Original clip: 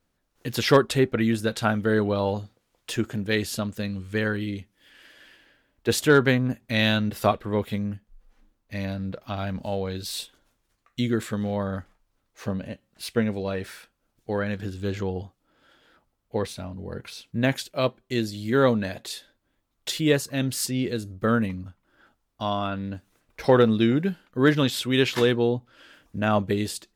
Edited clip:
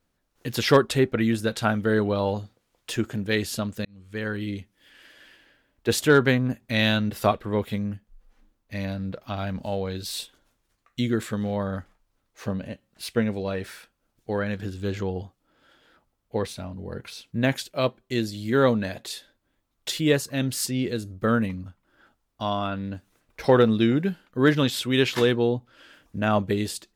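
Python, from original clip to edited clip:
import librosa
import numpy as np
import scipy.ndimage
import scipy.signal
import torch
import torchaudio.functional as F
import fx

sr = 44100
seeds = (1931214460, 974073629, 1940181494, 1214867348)

y = fx.edit(x, sr, fx.fade_in_span(start_s=3.85, length_s=0.66), tone=tone)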